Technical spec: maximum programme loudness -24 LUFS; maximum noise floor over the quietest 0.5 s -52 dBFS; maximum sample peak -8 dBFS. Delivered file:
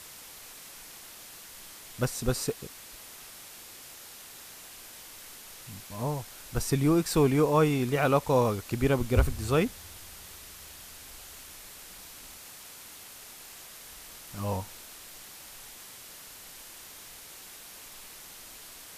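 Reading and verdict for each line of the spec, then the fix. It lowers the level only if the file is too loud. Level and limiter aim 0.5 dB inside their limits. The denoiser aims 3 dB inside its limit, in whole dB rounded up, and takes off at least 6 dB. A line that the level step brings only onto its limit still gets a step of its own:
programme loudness -27.5 LUFS: OK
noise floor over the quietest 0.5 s -47 dBFS: fail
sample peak -10.0 dBFS: OK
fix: denoiser 8 dB, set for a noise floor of -47 dBFS

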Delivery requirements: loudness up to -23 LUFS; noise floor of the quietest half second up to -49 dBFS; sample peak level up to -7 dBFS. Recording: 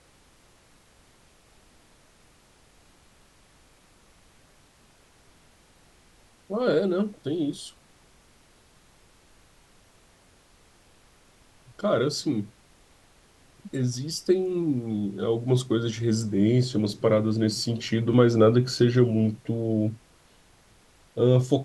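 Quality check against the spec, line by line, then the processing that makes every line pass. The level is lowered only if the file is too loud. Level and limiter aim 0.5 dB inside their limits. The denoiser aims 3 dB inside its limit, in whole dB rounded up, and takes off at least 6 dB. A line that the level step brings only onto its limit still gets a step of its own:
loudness -24.5 LUFS: OK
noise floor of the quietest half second -58 dBFS: OK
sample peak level -6.5 dBFS: fail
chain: limiter -7.5 dBFS

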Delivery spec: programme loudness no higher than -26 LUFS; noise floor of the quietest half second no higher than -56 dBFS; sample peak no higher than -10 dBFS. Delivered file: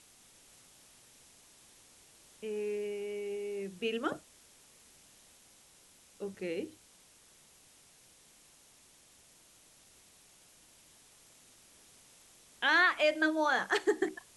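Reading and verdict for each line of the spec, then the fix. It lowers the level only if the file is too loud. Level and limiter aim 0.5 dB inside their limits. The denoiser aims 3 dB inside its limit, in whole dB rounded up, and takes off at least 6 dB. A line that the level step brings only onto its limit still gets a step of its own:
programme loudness -32.0 LUFS: OK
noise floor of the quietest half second -62 dBFS: OK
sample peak -15.5 dBFS: OK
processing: none

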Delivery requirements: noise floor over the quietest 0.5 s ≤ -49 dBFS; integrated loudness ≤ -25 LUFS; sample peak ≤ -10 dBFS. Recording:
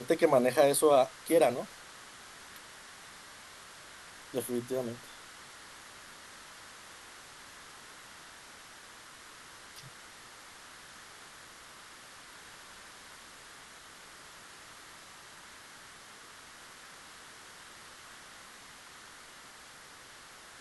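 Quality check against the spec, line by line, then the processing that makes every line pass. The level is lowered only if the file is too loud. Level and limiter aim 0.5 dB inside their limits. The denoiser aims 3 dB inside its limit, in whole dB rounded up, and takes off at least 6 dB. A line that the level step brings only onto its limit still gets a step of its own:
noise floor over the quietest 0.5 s -52 dBFS: OK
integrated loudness -28.5 LUFS: OK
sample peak -12.0 dBFS: OK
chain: none

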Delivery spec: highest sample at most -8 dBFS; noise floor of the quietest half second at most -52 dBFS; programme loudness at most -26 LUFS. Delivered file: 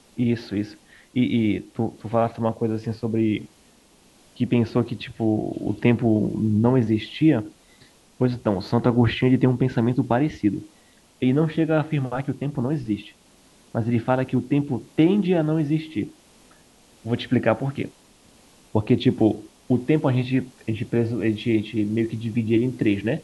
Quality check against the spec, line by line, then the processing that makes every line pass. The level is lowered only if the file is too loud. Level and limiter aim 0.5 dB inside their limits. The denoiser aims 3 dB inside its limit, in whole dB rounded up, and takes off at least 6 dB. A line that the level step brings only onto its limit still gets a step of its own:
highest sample -5.0 dBFS: fail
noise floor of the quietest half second -55 dBFS: OK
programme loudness -23.0 LUFS: fail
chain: gain -3.5 dB

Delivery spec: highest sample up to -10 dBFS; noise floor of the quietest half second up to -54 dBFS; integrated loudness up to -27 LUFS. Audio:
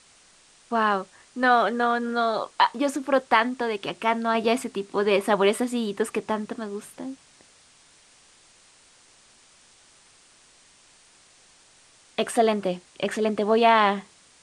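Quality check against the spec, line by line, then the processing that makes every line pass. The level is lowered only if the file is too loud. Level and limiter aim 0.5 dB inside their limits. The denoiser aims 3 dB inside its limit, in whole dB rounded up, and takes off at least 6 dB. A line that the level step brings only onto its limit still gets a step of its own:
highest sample -4.5 dBFS: fail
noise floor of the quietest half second -56 dBFS: OK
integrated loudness -24.0 LUFS: fail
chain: gain -3.5 dB; limiter -10.5 dBFS

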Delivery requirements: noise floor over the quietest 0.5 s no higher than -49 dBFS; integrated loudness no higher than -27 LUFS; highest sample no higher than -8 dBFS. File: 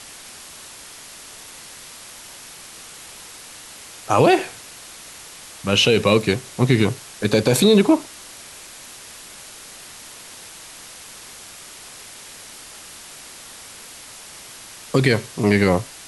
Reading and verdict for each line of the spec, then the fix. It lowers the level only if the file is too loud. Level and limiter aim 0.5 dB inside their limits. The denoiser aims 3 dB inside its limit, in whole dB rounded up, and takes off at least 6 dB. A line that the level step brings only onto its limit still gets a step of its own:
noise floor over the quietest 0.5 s -40 dBFS: fail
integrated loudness -18.0 LUFS: fail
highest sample -4.5 dBFS: fail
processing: gain -9.5 dB

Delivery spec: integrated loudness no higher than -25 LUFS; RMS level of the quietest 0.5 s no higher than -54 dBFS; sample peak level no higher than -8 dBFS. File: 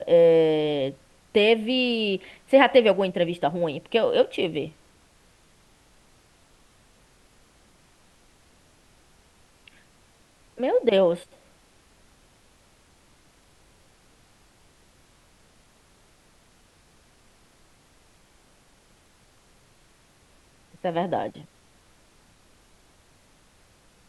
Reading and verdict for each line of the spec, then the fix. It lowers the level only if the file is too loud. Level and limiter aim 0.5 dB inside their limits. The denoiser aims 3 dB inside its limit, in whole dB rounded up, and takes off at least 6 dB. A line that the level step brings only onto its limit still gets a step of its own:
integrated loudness -22.5 LUFS: fail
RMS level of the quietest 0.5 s -59 dBFS: OK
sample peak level -5.5 dBFS: fail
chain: gain -3 dB

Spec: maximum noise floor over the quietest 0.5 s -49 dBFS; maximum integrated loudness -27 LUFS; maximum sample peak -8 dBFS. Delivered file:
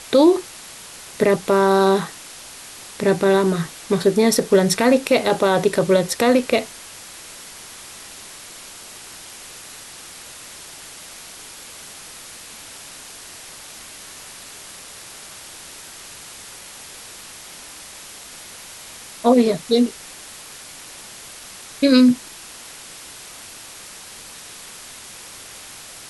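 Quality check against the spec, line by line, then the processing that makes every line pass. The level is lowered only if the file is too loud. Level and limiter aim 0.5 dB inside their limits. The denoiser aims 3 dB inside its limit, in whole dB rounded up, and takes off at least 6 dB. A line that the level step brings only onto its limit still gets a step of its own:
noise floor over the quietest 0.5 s -39 dBFS: fail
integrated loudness -17.5 LUFS: fail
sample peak -5.0 dBFS: fail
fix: denoiser 6 dB, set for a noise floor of -39 dBFS; gain -10 dB

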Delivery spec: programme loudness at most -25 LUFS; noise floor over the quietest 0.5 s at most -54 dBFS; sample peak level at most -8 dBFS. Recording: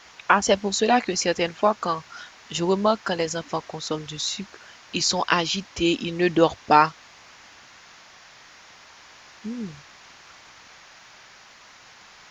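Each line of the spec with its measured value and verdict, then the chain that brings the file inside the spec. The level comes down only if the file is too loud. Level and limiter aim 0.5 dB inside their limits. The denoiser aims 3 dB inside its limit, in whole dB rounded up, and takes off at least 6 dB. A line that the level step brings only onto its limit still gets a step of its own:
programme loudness -23.0 LUFS: fail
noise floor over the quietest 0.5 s -49 dBFS: fail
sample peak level -3.0 dBFS: fail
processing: denoiser 6 dB, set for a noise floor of -49 dBFS; gain -2.5 dB; limiter -8.5 dBFS

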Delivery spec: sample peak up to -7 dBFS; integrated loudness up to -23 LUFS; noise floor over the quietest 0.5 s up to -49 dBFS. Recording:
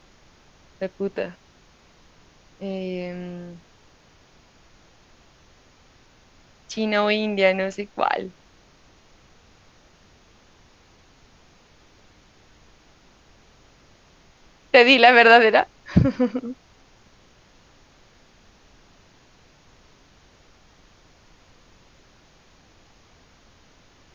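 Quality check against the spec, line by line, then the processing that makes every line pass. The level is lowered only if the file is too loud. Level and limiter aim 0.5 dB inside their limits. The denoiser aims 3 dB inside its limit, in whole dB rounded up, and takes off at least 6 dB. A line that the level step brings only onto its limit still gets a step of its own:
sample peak -1.5 dBFS: fail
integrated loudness -19.0 LUFS: fail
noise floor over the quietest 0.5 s -55 dBFS: OK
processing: gain -4.5 dB; limiter -7.5 dBFS

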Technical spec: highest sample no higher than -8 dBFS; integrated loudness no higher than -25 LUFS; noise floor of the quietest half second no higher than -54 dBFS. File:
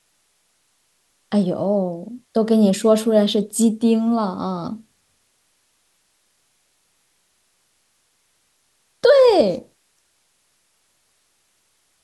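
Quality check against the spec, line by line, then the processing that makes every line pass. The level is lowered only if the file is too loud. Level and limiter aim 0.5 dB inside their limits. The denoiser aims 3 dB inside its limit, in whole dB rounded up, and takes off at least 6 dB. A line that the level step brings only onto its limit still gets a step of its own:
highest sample -4.5 dBFS: fail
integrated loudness -18.0 LUFS: fail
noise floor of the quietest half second -65 dBFS: OK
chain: gain -7.5 dB

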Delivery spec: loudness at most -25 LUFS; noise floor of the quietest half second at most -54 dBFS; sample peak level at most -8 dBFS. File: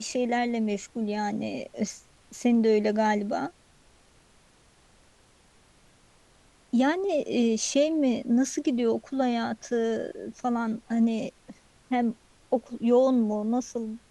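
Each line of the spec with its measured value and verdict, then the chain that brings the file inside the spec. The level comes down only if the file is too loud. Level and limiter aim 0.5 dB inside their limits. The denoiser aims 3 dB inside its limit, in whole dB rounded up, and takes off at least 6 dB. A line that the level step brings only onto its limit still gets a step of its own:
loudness -27.0 LUFS: OK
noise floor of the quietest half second -60 dBFS: OK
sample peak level -12.0 dBFS: OK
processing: none

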